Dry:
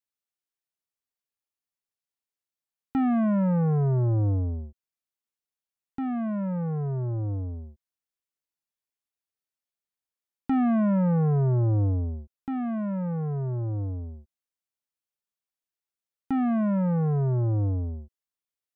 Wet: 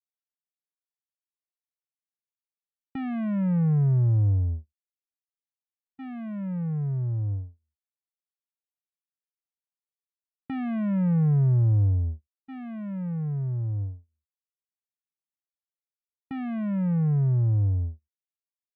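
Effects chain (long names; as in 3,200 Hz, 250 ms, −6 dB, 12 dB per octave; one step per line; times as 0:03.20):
noise gate −31 dBFS, range −42 dB
flat-topped bell 580 Hz −11.5 dB 3 octaves
level +2.5 dB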